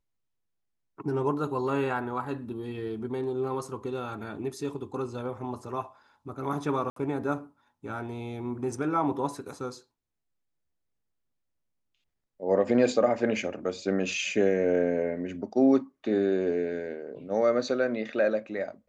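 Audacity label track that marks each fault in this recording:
6.900000	6.960000	drop-out 63 ms

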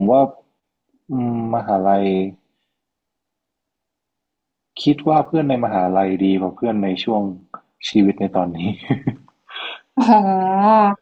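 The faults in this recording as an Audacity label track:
5.250000	5.250000	drop-out 4.2 ms

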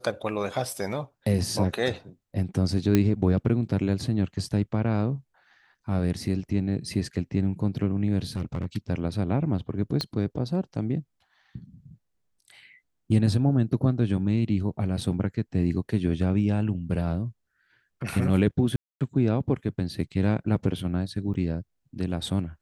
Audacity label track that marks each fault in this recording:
2.950000	2.950000	click −8 dBFS
8.360000	8.660000	clipping −24 dBFS
10.010000	10.010000	click −15 dBFS
15.010000	15.010000	drop-out 3.1 ms
18.760000	19.010000	drop-out 247 ms
21.340000	21.340000	drop-out 2.5 ms

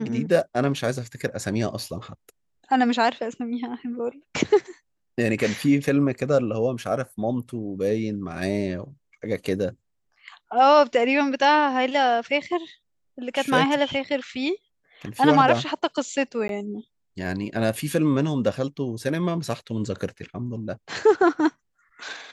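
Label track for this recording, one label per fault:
16.480000	16.490000	drop-out 12 ms

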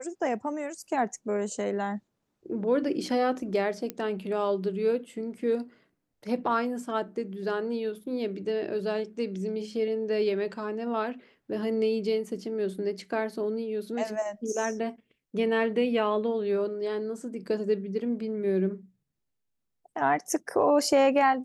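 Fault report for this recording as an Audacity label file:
3.900000	3.900000	click −17 dBFS

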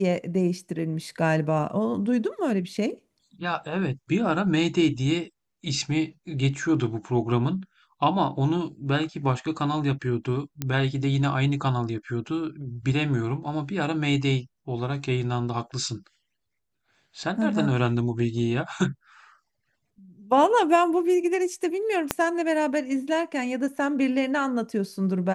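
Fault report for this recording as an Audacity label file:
10.620000	10.620000	click −13 dBFS
22.110000	22.110000	click −6 dBFS

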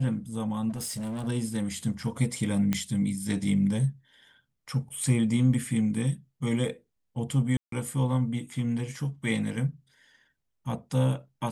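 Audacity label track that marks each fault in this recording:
0.690000	1.280000	clipping −30.5 dBFS
2.730000	2.730000	click −13 dBFS
7.570000	7.720000	drop-out 153 ms

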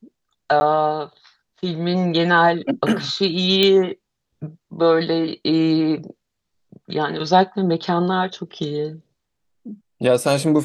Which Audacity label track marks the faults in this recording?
0.600000	0.610000	drop-out 10 ms
3.630000	3.630000	click −5 dBFS

